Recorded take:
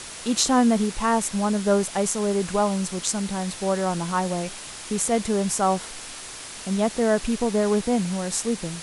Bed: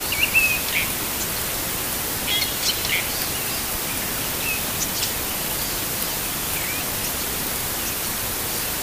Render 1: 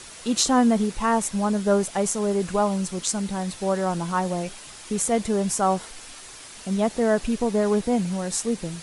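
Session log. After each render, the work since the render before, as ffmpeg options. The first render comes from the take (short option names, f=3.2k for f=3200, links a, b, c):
-af "afftdn=nr=6:nf=-38"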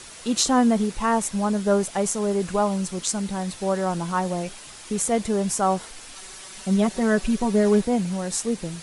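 -filter_complex "[0:a]asettb=1/sr,asplit=3[a][b][c];[a]atrim=end=6.154[d];[b]atrim=start=6.15:end=7.85,asetpts=PTS-STARTPTS,afade=t=in:d=0.004:c=qsin,afade=t=out:st=1.696:d=0.004:c=qsin,aecho=1:1:5.3:0.73,atrim=end_sample=74970[e];[c]atrim=start=7.846[f];[d][e]acrossfade=d=0.004:c1=hsin:c2=qsin[g];[g][f]acrossfade=d=0.004:c1=qsin:c2=hsin"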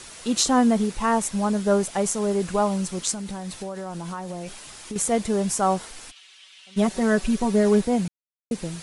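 -filter_complex "[0:a]asettb=1/sr,asplit=3[a][b][c];[a]atrim=end=3.124[d];[b]atrim=start=3.12:end=4.96,asetpts=PTS-STARTPTS,afade=t=in:d=0.004:c=qsin,afade=t=out:st=1.836:d=0.004:c=qsin,acompressor=threshold=-28dB:ratio=12:attack=3.2:release=140:knee=1:detection=peak[e];[c]atrim=start=4.956[f];[d][e]acrossfade=d=0.004:c1=hsin:c2=qsin[g];[g][f]acrossfade=d=0.004:c1=qsin:c2=hsin,asplit=3[h][i][j];[h]afade=t=out:st=6.1:d=0.02[k];[i]bandpass=f=3k:t=q:w=2.9,afade=t=in:st=6.1:d=0.02,afade=t=out:st=6.76:d=0.02[l];[j]afade=t=in:st=6.76:d=0.02[m];[k][l][m]amix=inputs=3:normalize=0,asplit=3[n][o][p];[n]atrim=end=8.08,asetpts=PTS-STARTPTS,afade=t=out:st=8.076:d=0.004:c=hsin[q];[o]atrim=start=8.08:end=8.51,asetpts=PTS-STARTPTS,volume=0[r];[p]atrim=start=8.51,asetpts=PTS-STARTPTS,afade=t=in:d=0.004:c=hsin[s];[q][r][s]concat=n=3:v=0:a=1"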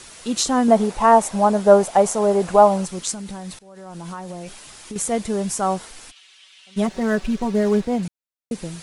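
-filter_complex "[0:a]asettb=1/sr,asplit=3[a][b][c];[a]atrim=end=0.684[d];[b]atrim=start=0.68:end=2.86,asetpts=PTS-STARTPTS,afade=t=in:d=0.004:c=qsin,afade=t=out:st=2.176:d=0.004:c=qsin,equalizer=f=720:t=o:w=1.4:g=13[e];[c]atrim=start=2.856[f];[d][e]acrossfade=d=0.004:c1=hsin:c2=qsin[g];[g][f]acrossfade=d=0.004:c1=qsin:c2=hsin,asettb=1/sr,asplit=3[h][i][j];[h]atrim=end=6.864[k];[i]atrim=start=6.86:end=8.03,asetpts=PTS-STARTPTS,afade=t=in:d=0.004:c=qsin,afade=t=out:st=1.166:d=0.004:c=qsin,adynamicsmooth=sensitivity=8:basefreq=4k[l];[j]atrim=start=8.026[m];[k][l]acrossfade=d=0.004:c1=hsin:c2=qsin[n];[n][m]acrossfade=d=0.004:c1=qsin:c2=hsin,asplit=2[o][p];[o]atrim=end=3.59,asetpts=PTS-STARTPTS,afade=t=out:st=3.586:d=0.004:c=hsin:silence=0.0630957[q];[p]atrim=start=3.59,asetpts=PTS-STARTPTS,afade=t=in:d=0.48:silence=0.0630957[r];[q][r]concat=n=2:v=0:a=1"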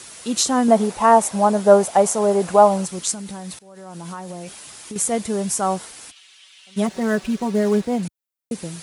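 -af "highpass=77,highshelf=f=9.8k:g=9"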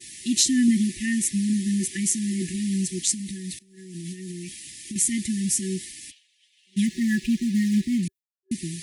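-af "agate=range=-33dB:threshold=-38dB:ratio=3:detection=peak,afftfilt=real='re*(1-between(b*sr/4096,380,1700))':imag='im*(1-between(b*sr/4096,380,1700))':win_size=4096:overlap=0.75"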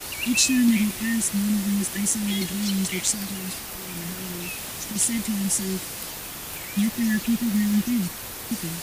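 -filter_complex "[1:a]volume=-10dB[a];[0:a][a]amix=inputs=2:normalize=0"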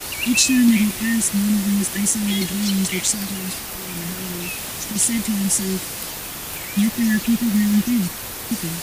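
-af "volume=4.5dB,alimiter=limit=-2dB:level=0:latency=1"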